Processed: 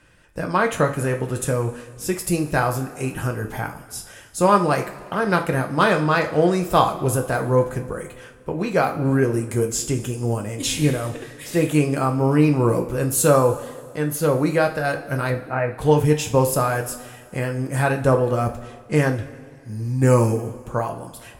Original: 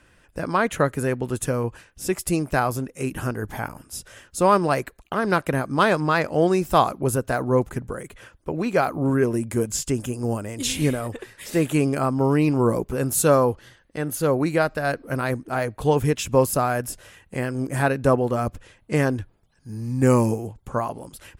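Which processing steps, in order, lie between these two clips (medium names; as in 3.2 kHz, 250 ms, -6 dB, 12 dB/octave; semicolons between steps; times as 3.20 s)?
15.30–15.72 s: steep low-pass 2.8 kHz 96 dB/octave; reverberation, pre-delay 3 ms, DRR 3 dB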